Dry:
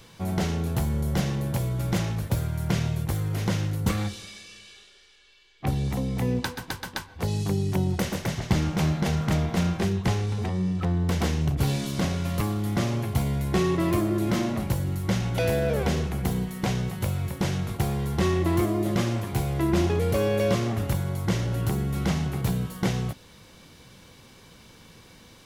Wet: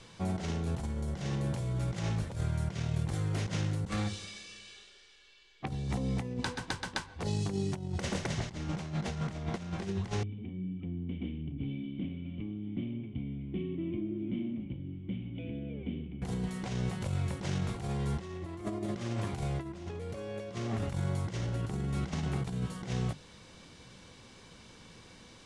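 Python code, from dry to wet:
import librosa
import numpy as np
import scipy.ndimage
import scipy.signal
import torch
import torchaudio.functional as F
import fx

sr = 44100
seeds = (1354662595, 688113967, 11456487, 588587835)

y = fx.formant_cascade(x, sr, vowel='i', at=(10.23, 16.22))
y = scipy.signal.sosfilt(scipy.signal.butter(6, 9500.0, 'lowpass', fs=sr, output='sos'), y)
y = fx.hum_notches(y, sr, base_hz=50, count=3)
y = fx.over_compress(y, sr, threshold_db=-28.0, ratio=-0.5)
y = y * librosa.db_to_amplitude(-5.0)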